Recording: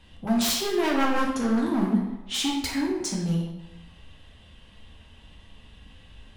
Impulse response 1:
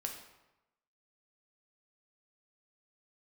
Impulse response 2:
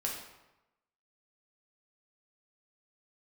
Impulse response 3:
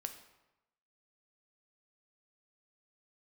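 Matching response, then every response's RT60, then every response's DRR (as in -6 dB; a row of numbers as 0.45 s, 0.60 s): 2; 1.0 s, 1.0 s, 0.95 s; 2.0 dB, -2.0 dB, 6.5 dB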